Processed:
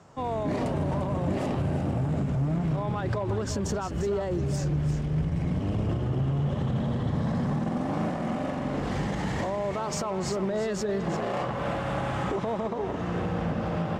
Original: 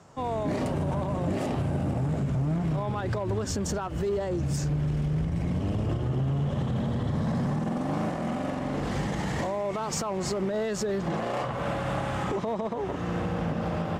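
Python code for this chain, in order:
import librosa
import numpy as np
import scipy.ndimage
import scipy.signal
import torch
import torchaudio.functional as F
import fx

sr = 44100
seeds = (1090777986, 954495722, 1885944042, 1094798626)

p1 = fx.high_shelf(x, sr, hz=7900.0, db=-7.0)
y = p1 + fx.echo_single(p1, sr, ms=347, db=-10.0, dry=0)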